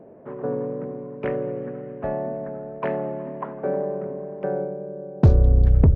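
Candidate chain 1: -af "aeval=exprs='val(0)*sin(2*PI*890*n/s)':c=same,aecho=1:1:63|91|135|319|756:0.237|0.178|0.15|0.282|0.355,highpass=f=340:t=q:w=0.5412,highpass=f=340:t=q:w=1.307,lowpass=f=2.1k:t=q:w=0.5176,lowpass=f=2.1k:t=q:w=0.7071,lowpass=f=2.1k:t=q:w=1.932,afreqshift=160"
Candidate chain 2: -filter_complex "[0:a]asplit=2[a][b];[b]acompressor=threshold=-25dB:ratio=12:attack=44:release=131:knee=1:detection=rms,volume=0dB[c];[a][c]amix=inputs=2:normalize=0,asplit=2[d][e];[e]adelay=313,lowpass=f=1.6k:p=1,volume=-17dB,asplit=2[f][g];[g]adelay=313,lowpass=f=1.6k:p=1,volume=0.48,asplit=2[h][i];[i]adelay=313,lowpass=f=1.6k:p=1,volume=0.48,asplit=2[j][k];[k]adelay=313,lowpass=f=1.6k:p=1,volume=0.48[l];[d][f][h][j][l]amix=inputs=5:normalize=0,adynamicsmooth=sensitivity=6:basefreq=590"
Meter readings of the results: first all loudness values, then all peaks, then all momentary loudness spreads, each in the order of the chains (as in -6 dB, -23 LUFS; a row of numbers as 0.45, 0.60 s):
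-24.5, -21.5 LUFS; -5.5, -3.0 dBFS; 18, 11 LU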